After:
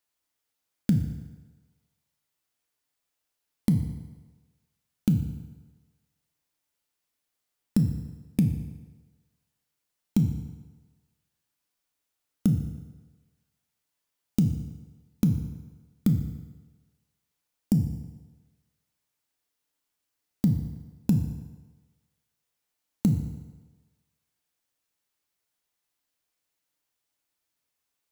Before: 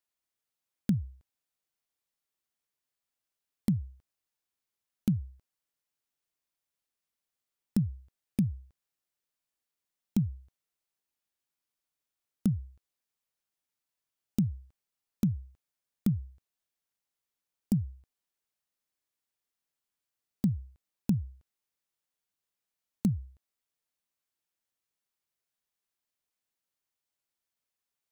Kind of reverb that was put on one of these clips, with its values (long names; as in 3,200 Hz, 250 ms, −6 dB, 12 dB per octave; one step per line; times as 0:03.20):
feedback delay network reverb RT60 1.3 s, low-frequency decay 0.8×, high-frequency decay 0.8×, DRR 4.5 dB
level +5 dB